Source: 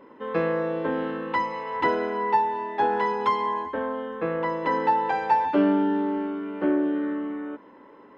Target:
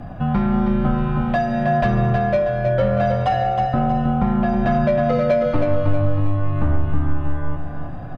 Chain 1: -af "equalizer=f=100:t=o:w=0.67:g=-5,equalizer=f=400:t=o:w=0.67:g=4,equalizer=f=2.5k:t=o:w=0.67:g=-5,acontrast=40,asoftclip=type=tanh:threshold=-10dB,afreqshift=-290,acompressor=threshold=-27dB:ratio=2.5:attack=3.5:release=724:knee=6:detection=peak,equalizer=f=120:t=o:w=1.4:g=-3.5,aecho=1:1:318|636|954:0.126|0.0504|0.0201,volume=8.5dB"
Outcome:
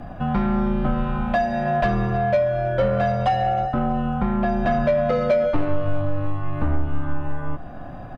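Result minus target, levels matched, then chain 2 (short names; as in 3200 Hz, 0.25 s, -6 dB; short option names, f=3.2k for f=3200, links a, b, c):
echo-to-direct -12 dB; 125 Hz band -2.5 dB
-af "equalizer=f=100:t=o:w=0.67:g=-5,equalizer=f=400:t=o:w=0.67:g=4,equalizer=f=2.5k:t=o:w=0.67:g=-5,acontrast=40,asoftclip=type=tanh:threshold=-10dB,afreqshift=-290,acompressor=threshold=-27dB:ratio=2.5:attack=3.5:release=724:knee=6:detection=peak,equalizer=f=120:t=o:w=1.4:g=2.5,aecho=1:1:318|636|954|1272|1590:0.501|0.2|0.0802|0.0321|0.0128,volume=8.5dB"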